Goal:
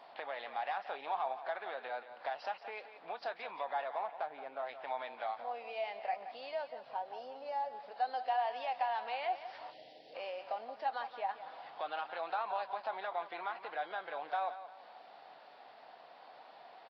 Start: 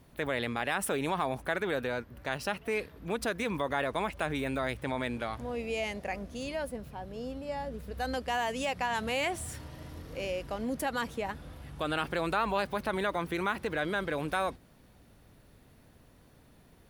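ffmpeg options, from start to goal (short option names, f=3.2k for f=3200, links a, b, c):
-filter_complex "[0:a]asettb=1/sr,asplit=3[a][b][c];[a]atrim=end=6.834[d];[b]atrim=start=6.83:end=7.52,asetpts=PTS-STARTPTS,afade=t=in:d=0.004:c=qsin,afade=t=out:st=0.686:d=0.004:c=qsin,aecho=1:1:7.4:0.46,atrim=end_sample=30429[e];[c]atrim=start=7.516[f];[d][e]acrossfade=d=0.004:c1=hsin:c2=qsin[g];[g][f]acrossfade=d=0.004:c1=qsin:c2=hsin,acompressor=threshold=-50dB:ratio=3,asoftclip=type=tanh:threshold=-34.5dB,asettb=1/sr,asplit=3[h][i][j];[h]atrim=end=3.954[k];[i]atrim=start=3.95:end=4.69,asetpts=PTS-STARTPTS,afade=t=in:d=0.004:c=qsin,afade=t=out:st=0.736:d=0.004:c=qsin,adynamicsmooth=sensitivity=7:basefreq=1.3k[l];[j]atrim=start=4.686[m];[k][l]acrossfade=d=0.004:c1=hsin:c2=qsin[n];[n][m]acrossfade=d=0.004:c1=qsin:c2=hsin,highpass=f=750:t=q:w=5,aecho=1:1:175|350|525|700:0.251|0.0929|0.0344|0.0127,aresample=11025,aresample=44100,asplit=3[o][p][q];[o]afade=t=out:st=9.7:d=0.02[r];[p]asuperstop=centerf=1200:order=4:qfactor=0.65,afade=t=in:st=9.7:d=0.02,afade=t=out:st=10.14:d=0.02[s];[q]afade=t=in:st=10.14:d=0.02[t];[r][s][t]amix=inputs=3:normalize=0,volume=4.5dB" -ar 44100 -c:a libvorbis -b:a 32k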